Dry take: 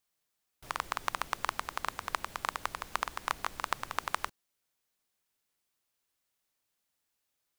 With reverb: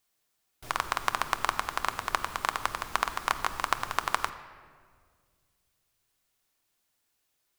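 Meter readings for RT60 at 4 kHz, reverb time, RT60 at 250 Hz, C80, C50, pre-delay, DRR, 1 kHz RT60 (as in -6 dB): 1.2 s, 1.9 s, 2.4 s, 13.5 dB, 12.5 dB, 3 ms, 9.0 dB, 1.7 s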